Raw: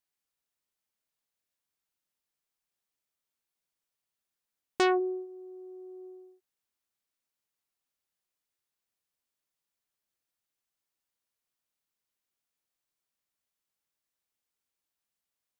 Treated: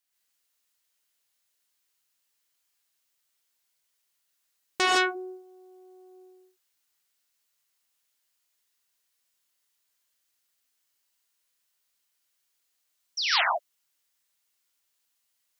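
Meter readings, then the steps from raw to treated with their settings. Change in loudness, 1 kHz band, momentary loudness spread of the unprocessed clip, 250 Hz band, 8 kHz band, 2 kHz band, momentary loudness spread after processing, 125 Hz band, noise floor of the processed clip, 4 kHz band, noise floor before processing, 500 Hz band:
+3.5 dB, +7.0 dB, 20 LU, −4.0 dB, +13.5 dB, +12.0 dB, 18 LU, can't be measured, −77 dBFS, +16.0 dB, below −85 dBFS, −2.5 dB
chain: tilt shelving filter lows −6 dB
sound drawn into the spectrogram fall, 0:13.17–0:13.42, 600–6,100 Hz −29 dBFS
reverb whose tail is shaped and stops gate 180 ms rising, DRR −5 dB

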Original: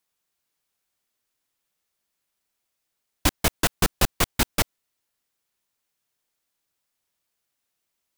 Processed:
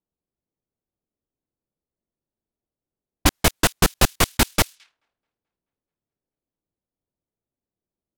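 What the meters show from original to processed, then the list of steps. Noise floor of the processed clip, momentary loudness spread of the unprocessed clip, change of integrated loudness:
below −85 dBFS, 3 LU, +4.0 dB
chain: delay with a high-pass on its return 216 ms, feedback 69%, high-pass 3,400 Hz, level −23 dB
low-pass that shuts in the quiet parts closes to 400 Hz, open at −23 dBFS
level +4.5 dB

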